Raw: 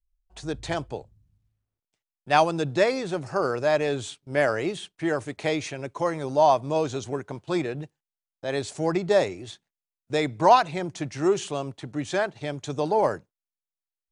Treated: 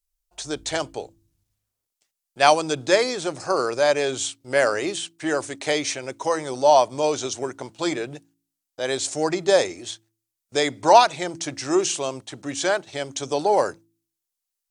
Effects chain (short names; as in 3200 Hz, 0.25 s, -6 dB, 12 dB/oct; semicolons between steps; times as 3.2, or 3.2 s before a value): speed mistake 25 fps video run at 24 fps; tone controls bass -10 dB, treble +10 dB; de-hum 55.4 Hz, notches 6; gain +3.5 dB